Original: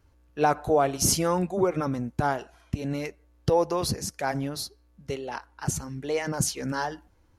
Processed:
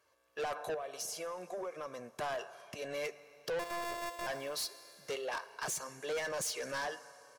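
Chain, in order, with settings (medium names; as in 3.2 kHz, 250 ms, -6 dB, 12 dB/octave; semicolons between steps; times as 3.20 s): 3.59–4.27 s: sorted samples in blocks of 128 samples; recorder AGC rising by 6.9 dB/s; high-pass 530 Hz 12 dB/octave; comb 1.8 ms, depth 56%; peak limiter -18 dBFS, peak gain reduction 8.5 dB; 0.74–2.19 s: compression 16:1, threshold -35 dBFS, peak gain reduction 13.5 dB; Schroeder reverb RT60 3.2 s, combs from 27 ms, DRR 19.5 dB; saturation -32 dBFS, distortion -7 dB; trim -1 dB; Vorbis 128 kbps 48 kHz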